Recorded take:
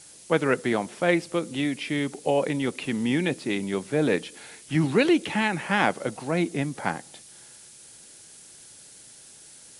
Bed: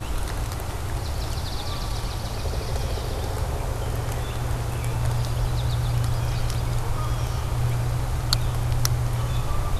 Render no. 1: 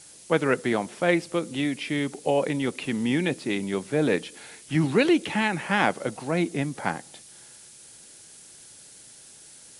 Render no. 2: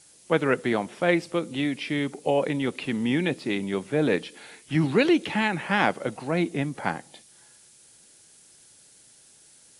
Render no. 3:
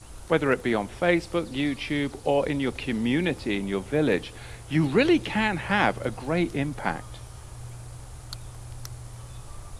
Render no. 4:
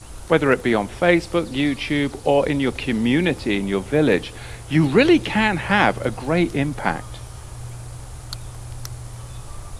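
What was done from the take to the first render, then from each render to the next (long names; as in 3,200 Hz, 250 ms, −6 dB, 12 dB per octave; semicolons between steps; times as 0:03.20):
no processing that can be heard
noise reduction from a noise print 6 dB
mix in bed −16.5 dB
level +6 dB; brickwall limiter −1 dBFS, peak gain reduction 1 dB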